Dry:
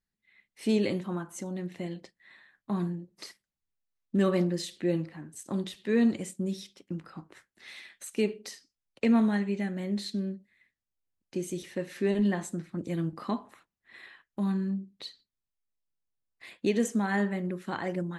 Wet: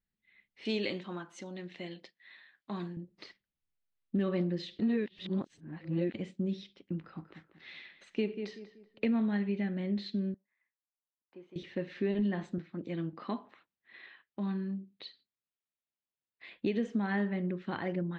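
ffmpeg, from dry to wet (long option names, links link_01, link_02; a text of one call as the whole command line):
ffmpeg -i in.wav -filter_complex "[0:a]asettb=1/sr,asplit=3[link_01][link_02][link_03];[link_01]atrim=end=0.654[link_04];[link_02]atrim=start=0.65:end=2.97,asetpts=PTS-STARTPTS,afade=type=in:duration=0.004:curve=qsin,afade=type=out:start_time=2.316:duration=0.004:curve=qsin,aemphasis=mode=production:type=riaa[link_05];[link_03]atrim=start=2.966[link_06];[link_04][link_05]acrossfade=duration=0.004:curve1=hsin:curve2=qsin[link_07];[link_07][link_06]acrossfade=duration=0.004:curve1=qsin:curve2=hsin,asettb=1/sr,asplit=3[link_08][link_09][link_10];[link_08]atrim=end=7.014[link_11];[link_09]atrim=start=7.01:end=9.05,asetpts=PTS-STARTPTS,afade=type=in:duration=0.004:curve=qsin,afade=type=out:start_time=2.036:duration=0.004:curve=qsin,asplit=2[link_12][link_13];[link_13]adelay=190,lowpass=frequency=2000:poles=1,volume=-10dB,asplit=2[link_14][link_15];[link_15]adelay=190,lowpass=frequency=2000:poles=1,volume=0.34,asplit=2[link_16][link_17];[link_17]adelay=190,lowpass=frequency=2000:poles=1,volume=0.34,asplit=2[link_18][link_19];[link_19]adelay=190,lowpass=frequency=2000:poles=1,volume=0.34[link_20];[link_12][link_14][link_16][link_18][link_20]amix=inputs=5:normalize=0,atrim=end_sample=89964[link_21];[link_10]atrim=start=9.046[link_22];[link_11][link_21]acrossfade=duration=0.004:curve1=hsin:curve2=qsin[link_23];[link_23][link_22]acrossfade=duration=0.004:curve1=qsin:curve2=hsin,asettb=1/sr,asplit=3[link_24][link_25][link_26];[link_24]atrim=end=10.344[link_27];[link_25]atrim=start=10.34:end=11.56,asetpts=PTS-STARTPTS,afade=type=in:duration=0.004:curve=qsin,afade=type=out:start_time=1.216:duration=0.004:curve=qsin,bandpass=frequency=1000:width_type=q:width=2.6[link_28];[link_26]atrim=start=11.556[link_29];[link_27][link_28]acrossfade=duration=0.004:curve1=hsin:curve2=qsin[link_30];[link_30][link_29]acrossfade=duration=0.004:curve1=qsin:curve2=hsin,asettb=1/sr,asplit=3[link_31][link_32][link_33];[link_31]atrim=end=12.584[link_34];[link_32]atrim=start=12.58:end=16.56,asetpts=PTS-STARTPTS,afade=type=in:duration=0.004:curve=qsin,afade=type=out:start_time=3.976:duration=0.004:curve=qsin,highpass=frequency=290:poles=1[link_35];[link_33]atrim=start=16.556[link_36];[link_34][link_35]acrossfade=duration=0.004:curve1=hsin:curve2=qsin[link_37];[link_37][link_36]acrossfade=duration=0.004:curve1=qsin:curve2=hsin,asplit=3[link_38][link_39][link_40];[link_38]atrim=end=4.792[link_41];[link_39]atrim=start=4.788:end=6.142,asetpts=PTS-STARTPTS,areverse[link_42];[link_40]atrim=start=6.138[link_43];[link_41][link_42]acrossfade=duration=0.004:curve1=hsin:curve2=hsin[link_44];[link_44][link_43]acrossfade=duration=0.004:curve1=hsin:curve2=hsin,lowpass=frequency=3800:width=0.5412,lowpass=frequency=3800:width=1.3066,equalizer=frequency=1000:width=0.64:gain=-4.5,acompressor=threshold=-27dB:ratio=5" out.wav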